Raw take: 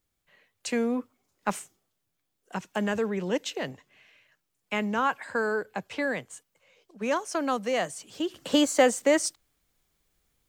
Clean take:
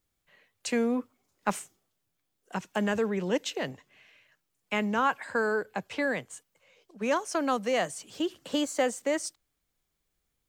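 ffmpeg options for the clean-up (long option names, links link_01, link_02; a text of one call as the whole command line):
ffmpeg -i in.wav -af "asetnsamples=nb_out_samples=441:pad=0,asendcmd='8.34 volume volume -6.5dB',volume=0dB" out.wav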